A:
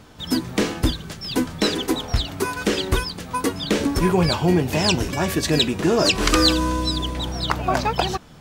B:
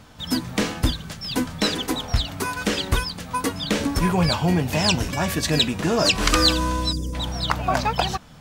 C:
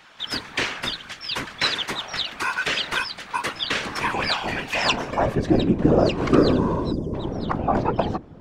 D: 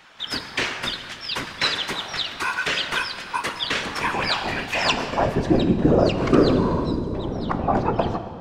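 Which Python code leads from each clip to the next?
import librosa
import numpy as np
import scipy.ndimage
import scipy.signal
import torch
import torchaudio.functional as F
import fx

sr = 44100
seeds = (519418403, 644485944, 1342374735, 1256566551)

y1 = fx.spec_box(x, sr, start_s=6.93, length_s=0.2, low_hz=560.0, high_hz=4700.0, gain_db=-20)
y1 = fx.peak_eq(y1, sr, hz=370.0, db=-8.5, octaves=0.52)
y2 = fx.octave_divider(y1, sr, octaves=1, level_db=2.0)
y2 = fx.filter_sweep_bandpass(y2, sr, from_hz=2100.0, to_hz=340.0, start_s=4.76, end_s=5.38, q=1.0)
y2 = fx.whisperise(y2, sr, seeds[0])
y2 = y2 * librosa.db_to_amplitude(6.0)
y3 = fx.rev_plate(y2, sr, seeds[1], rt60_s=2.2, hf_ratio=0.8, predelay_ms=0, drr_db=8.5)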